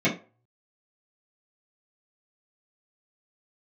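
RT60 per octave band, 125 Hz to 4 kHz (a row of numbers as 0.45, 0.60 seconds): 0.50, 0.25, 0.35, 0.35, 0.25, 0.20 seconds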